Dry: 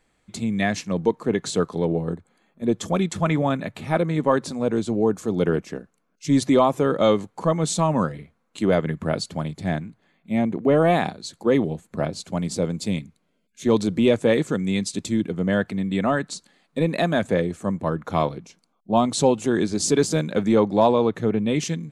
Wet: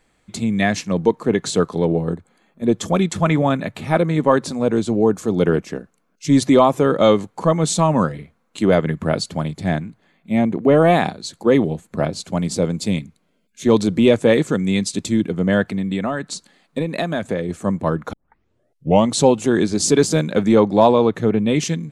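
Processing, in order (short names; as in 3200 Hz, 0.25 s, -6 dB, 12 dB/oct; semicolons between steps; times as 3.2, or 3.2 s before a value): 15.7–17.49 compressor 6:1, threshold -23 dBFS, peak gain reduction 8 dB; 18.13 tape start 0.98 s; gain +4.5 dB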